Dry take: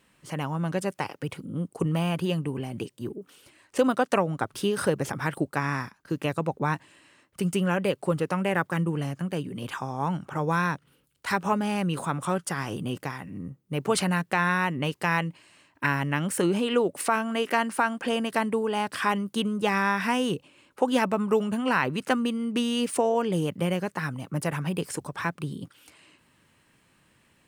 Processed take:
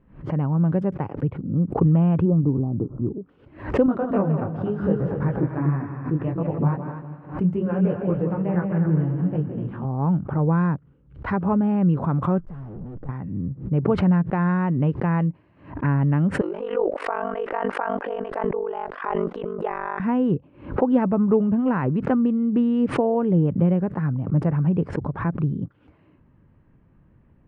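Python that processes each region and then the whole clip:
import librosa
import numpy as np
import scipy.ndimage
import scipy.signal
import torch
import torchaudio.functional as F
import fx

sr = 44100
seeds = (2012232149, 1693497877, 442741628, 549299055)

y = fx.chain(x, sr, fx.peak_eq(hz=290.0, db=5.0, octaves=0.32),
    fx.resample_bad(factor=4, down='none', up='hold'),
    fx.brickwall_bandstop(low_hz=1400.0, high_hz=5700.0), at=(2.25, 3.11))
y = fx.chain(y, sr, fx.echo_heads(ms=82, heads='second and third', feedback_pct=41, wet_db=-7.5),
    fx.detune_double(cents=25), at=(3.86, 9.85))
y = fx.chain(y, sr, fx.peak_eq(hz=2500.0, db=-10.5, octaves=0.9),
    fx.tube_stage(drive_db=42.0, bias=0.5), at=(12.39, 13.09))
y = fx.chain(y, sr, fx.highpass(hz=440.0, slope=24),
    fx.ring_mod(carrier_hz=24.0),
    fx.sustainer(db_per_s=27.0), at=(16.41, 20.0))
y = scipy.signal.sosfilt(scipy.signal.butter(2, 1700.0, 'lowpass', fs=sr, output='sos'), y)
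y = fx.tilt_eq(y, sr, slope=-4.5)
y = fx.pre_swell(y, sr, db_per_s=130.0)
y = y * librosa.db_to_amplitude(-2.0)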